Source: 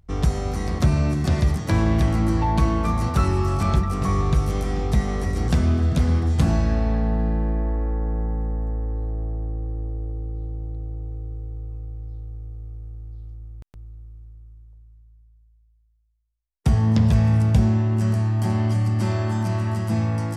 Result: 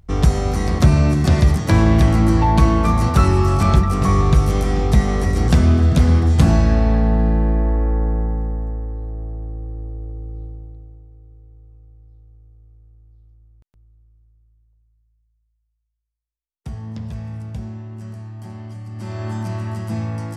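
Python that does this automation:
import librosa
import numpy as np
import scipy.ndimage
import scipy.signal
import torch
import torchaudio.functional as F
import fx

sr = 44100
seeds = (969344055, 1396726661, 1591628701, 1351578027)

y = fx.gain(x, sr, db=fx.line((8.01, 6.0), (8.98, -1.0), (10.42, -1.0), (11.08, -12.5), (18.86, -12.5), (19.27, -2.0)))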